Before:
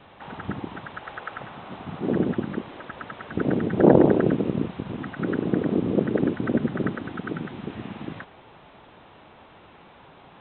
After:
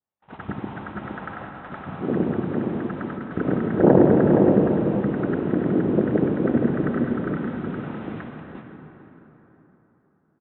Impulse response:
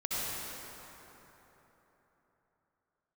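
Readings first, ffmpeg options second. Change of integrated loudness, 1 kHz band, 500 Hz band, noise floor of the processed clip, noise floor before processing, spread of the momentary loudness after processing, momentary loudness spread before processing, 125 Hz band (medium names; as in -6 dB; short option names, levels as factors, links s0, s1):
+3.0 dB, +2.0 dB, +3.0 dB, -64 dBFS, -51 dBFS, 19 LU, 19 LU, +3.5 dB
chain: -filter_complex "[0:a]bass=f=250:g=0,treble=f=4000:g=-13,aecho=1:1:468:0.596,agate=range=0.00562:threshold=0.0141:ratio=16:detection=peak,asplit=2[s0][s1];[1:a]atrim=start_sample=2205[s2];[s1][s2]afir=irnorm=-1:irlink=0,volume=0.355[s3];[s0][s3]amix=inputs=2:normalize=0,adynamicequalizer=threshold=0.00708:dfrequency=3200:dqfactor=0.77:tfrequency=3200:tqfactor=0.77:attack=5:release=100:ratio=0.375:range=2:mode=cutabove:tftype=bell,volume=0.794"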